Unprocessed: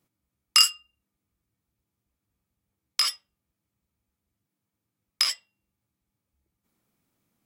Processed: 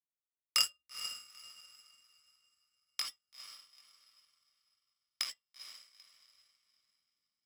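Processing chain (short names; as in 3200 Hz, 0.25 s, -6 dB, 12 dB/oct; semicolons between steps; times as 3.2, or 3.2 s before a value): diffused feedback echo 0.454 s, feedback 45%, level -6 dB; power-law curve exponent 1.4; gain -8 dB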